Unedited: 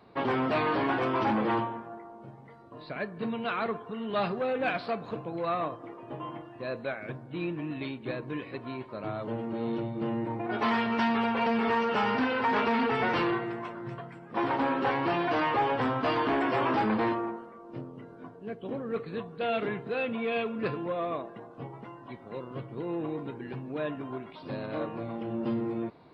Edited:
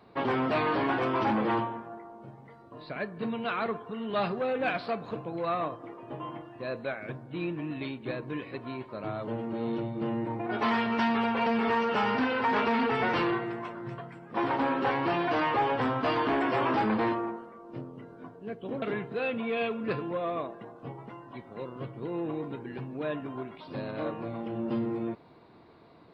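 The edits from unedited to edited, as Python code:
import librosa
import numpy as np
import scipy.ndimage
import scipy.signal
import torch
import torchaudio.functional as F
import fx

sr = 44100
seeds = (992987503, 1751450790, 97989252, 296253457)

y = fx.edit(x, sr, fx.cut(start_s=18.82, length_s=0.75), tone=tone)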